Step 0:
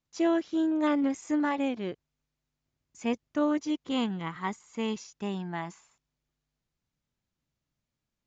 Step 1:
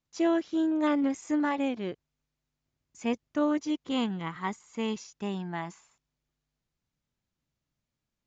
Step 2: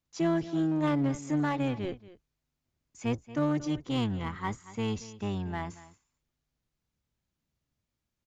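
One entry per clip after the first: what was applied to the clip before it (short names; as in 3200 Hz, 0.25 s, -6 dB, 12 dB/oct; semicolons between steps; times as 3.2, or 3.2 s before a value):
nothing audible
octaver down 1 oct, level -2 dB; echo 0.23 s -18 dB; in parallel at -4 dB: overloaded stage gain 29 dB; on the sum: gain -4.5 dB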